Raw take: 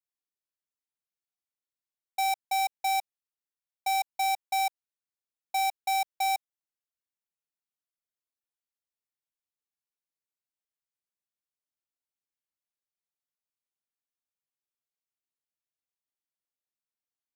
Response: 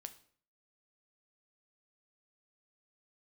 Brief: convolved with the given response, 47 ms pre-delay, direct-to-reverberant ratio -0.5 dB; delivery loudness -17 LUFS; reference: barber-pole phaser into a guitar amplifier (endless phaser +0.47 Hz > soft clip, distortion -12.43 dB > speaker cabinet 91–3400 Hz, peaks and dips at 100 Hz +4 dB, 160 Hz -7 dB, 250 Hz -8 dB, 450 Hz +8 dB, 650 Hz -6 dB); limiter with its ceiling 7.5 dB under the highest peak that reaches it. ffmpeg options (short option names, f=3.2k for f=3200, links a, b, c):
-filter_complex "[0:a]alimiter=level_in=9.5dB:limit=-24dB:level=0:latency=1,volume=-9.5dB,asplit=2[a][b];[1:a]atrim=start_sample=2205,adelay=47[c];[b][c]afir=irnorm=-1:irlink=0,volume=5.5dB[d];[a][d]amix=inputs=2:normalize=0,asplit=2[e][f];[f]afreqshift=0.47[g];[e][g]amix=inputs=2:normalize=1,asoftclip=threshold=-37.5dB,highpass=91,equalizer=f=100:t=q:w=4:g=4,equalizer=f=160:t=q:w=4:g=-7,equalizer=f=250:t=q:w=4:g=-8,equalizer=f=450:t=q:w=4:g=8,equalizer=f=650:t=q:w=4:g=-6,lowpass=f=3.4k:w=0.5412,lowpass=f=3.4k:w=1.3066,volume=27.5dB"